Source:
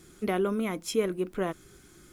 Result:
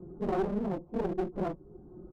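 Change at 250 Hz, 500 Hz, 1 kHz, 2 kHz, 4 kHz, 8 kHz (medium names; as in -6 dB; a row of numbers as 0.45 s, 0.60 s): -2.0 dB, -4.0 dB, -1.0 dB, -10.0 dB, under -15 dB, under -25 dB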